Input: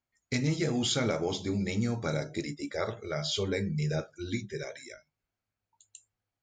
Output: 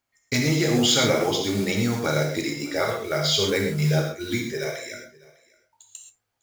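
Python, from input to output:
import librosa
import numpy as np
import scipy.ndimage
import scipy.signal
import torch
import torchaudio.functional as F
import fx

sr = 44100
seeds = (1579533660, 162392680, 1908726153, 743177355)

p1 = fx.block_float(x, sr, bits=5)
p2 = fx.low_shelf(p1, sr, hz=280.0, db=-7.5)
p3 = p2 + fx.echo_single(p2, sr, ms=602, db=-23.5, dry=0)
p4 = fx.rev_gated(p3, sr, seeds[0], gate_ms=150, shape='flat', drr_db=1.5)
y = p4 * librosa.db_to_amplitude(8.5)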